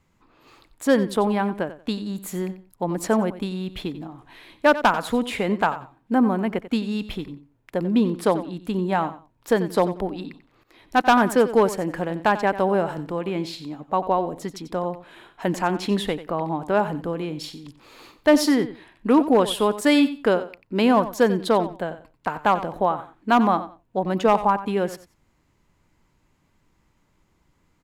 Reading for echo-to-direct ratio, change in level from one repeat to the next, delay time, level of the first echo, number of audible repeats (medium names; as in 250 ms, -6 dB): -14.0 dB, -13.5 dB, 91 ms, -14.0 dB, 2